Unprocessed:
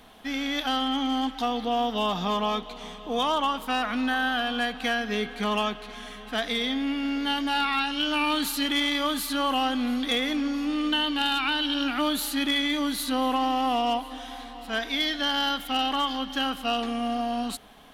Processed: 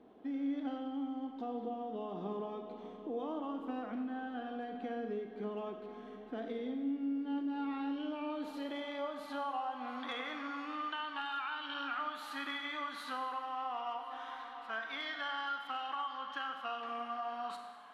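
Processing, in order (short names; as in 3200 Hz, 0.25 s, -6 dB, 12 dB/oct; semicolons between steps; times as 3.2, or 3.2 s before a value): band-pass sweep 350 Hz -> 1200 Hz, 7.61–10.33; compressor, threshold -39 dBFS, peak gain reduction 12 dB; Schroeder reverb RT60 1.3 s, combs from 32 ms, DRR 5 dB; gain +1.5 dB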